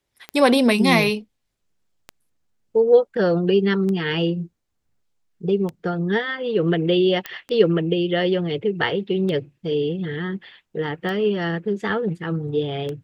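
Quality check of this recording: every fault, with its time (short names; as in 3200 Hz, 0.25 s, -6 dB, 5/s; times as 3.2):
tick 33 1/3 rpm -17 dBFS
7.26 pop -13 dBFS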